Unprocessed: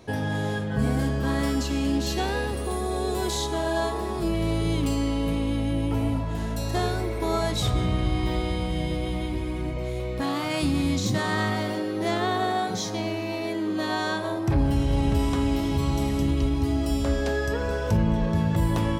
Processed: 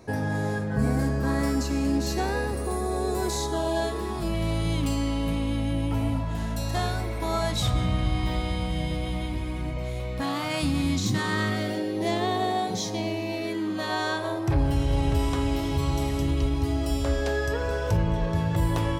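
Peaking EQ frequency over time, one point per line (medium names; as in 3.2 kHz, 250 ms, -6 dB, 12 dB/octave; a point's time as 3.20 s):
peaking EQ -13 dB 0.37 oct
3.44 s 3.2 kHz
4.24 s 390 Hz
10.75 s 390 Hz
11.98 s 1.4 kHz
13.28 s 1.4 kHz
13.98 s 220 Hz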